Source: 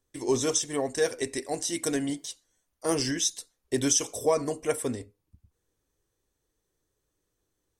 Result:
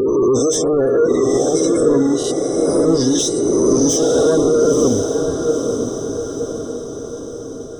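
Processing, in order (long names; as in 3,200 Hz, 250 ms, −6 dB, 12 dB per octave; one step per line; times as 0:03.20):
peak hold with a rise ahead of every peak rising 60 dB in 1.50 s
soft clipping −21.5 dBFS, distortion −11 dB
low shelf with overshoot 660 Hz +8.5 dB, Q 1.5
leveller curve on the samples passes 2
upward compression, threshold −26 dBFS
gate on every frequency bin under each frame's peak −25 dB strong
feedback delay with all-pass diffusion 947 ms, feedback 53%, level −5 dB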